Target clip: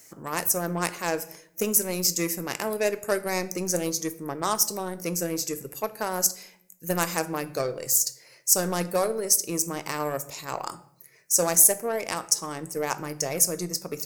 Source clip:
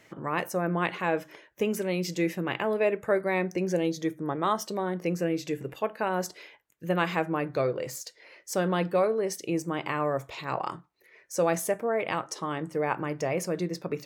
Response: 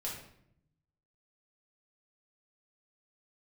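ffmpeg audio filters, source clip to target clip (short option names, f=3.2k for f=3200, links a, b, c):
-filter_complex "[0:a]aeval=exprs='0.282*(cos(1*acos(clip(val(0)/0.282,-1,1)))-cos(1*PI/2))+0.0158*(cos(7*acos(clip(val(0)/0.282,-1,1)))-cos(7*PI/2))+0.00251*(cos(8*acos(clip(val(0)/0.282,-1,1)))-cos(8*PI/2))':c=same,aexciter=amount=10.4:drive=6.1:freq=5k,asplit=2[a][b];[1:a]atrim=start_sample=2205[c];[b][c]afir=irnorm=-1:irlink=0,volume=-11.5dB[d];[a][d]amix=inputs=2:normalize=0,volume=-1dB"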